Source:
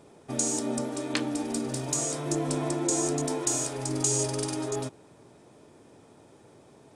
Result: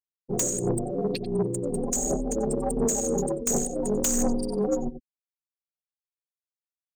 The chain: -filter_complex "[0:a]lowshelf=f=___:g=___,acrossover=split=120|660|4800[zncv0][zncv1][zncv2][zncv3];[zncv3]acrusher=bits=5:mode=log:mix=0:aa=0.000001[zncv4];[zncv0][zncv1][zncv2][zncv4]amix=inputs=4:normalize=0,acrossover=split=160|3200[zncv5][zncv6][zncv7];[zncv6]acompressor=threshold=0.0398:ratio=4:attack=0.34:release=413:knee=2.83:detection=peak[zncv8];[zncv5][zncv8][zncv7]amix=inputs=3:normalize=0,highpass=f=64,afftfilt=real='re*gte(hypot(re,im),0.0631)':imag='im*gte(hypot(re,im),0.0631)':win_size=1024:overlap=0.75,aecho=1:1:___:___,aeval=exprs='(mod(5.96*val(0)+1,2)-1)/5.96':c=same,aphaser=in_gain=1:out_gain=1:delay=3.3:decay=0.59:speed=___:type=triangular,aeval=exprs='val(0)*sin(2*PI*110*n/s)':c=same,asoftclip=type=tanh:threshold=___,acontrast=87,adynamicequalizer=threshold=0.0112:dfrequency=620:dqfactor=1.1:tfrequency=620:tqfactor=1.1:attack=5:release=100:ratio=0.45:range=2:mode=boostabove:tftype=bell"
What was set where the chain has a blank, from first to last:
230, 5.5, 92, 0.141, 1.4, 0.0531